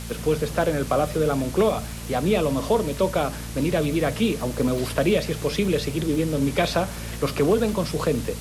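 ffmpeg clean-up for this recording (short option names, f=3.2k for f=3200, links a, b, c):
-af "adeclick=t=4,bandreject=f=57:t=h:w=4,bandreject=f=114:t=h:w=4,bandreject=f=171:t=h:w=4,bandreject=f=228:t=h:w=4,afwtdn=0.011"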